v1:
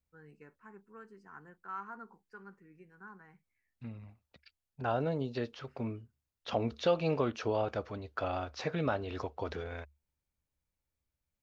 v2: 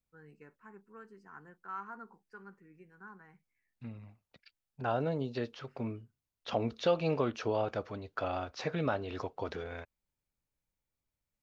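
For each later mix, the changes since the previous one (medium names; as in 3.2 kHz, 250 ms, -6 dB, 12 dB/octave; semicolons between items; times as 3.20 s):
master: add peaking EQ 72 Hz -13 dB 0.27 oct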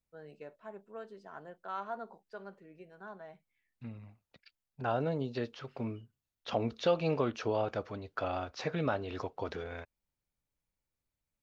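first voice: remove static phaser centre 1.5 kHz, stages 4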